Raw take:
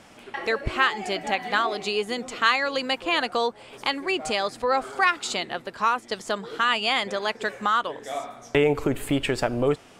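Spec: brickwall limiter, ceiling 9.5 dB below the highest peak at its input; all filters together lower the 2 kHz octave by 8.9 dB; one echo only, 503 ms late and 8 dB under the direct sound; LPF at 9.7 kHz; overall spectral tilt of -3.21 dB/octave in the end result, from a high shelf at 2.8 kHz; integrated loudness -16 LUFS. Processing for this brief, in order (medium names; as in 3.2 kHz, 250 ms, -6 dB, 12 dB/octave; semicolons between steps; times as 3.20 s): low-pass 9.7 kHz; peaking EQ 2 kHz -9 dB; treble shelf 2.8 kHz -7 dB; peak limiter -20.5 dBFS; delay 503 ms -8 dB; trim +15 dB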